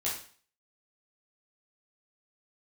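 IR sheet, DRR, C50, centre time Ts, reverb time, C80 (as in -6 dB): -7.5 dB, 5.0 dB, 35 ms, 0.45 s, 9.5 dB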